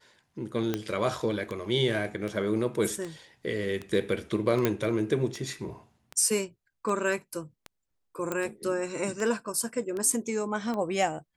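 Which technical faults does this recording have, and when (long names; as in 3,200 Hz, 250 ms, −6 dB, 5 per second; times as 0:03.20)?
scratch tick 78 rpm
0:00.74: click −19 dBFS
0:04.65: click −10 dBFS
0:08.32: click −16 dBFS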